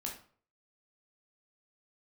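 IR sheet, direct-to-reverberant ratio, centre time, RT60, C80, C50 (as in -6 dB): -1.5 dB, 25 ms, 0.50 s, 12.0 dB, 7.0 dB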